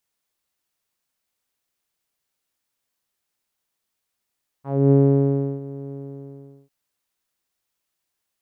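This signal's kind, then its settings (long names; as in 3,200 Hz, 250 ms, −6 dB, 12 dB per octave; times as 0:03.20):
subtractive voice saw C#3 12 dB per octave, low-pass 400 Hz, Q 2.6, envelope 1.5 octaves, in 0.15 s, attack 270 ms, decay 0.69 s, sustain −19.5 dB, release 0.77 s, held 1.28 s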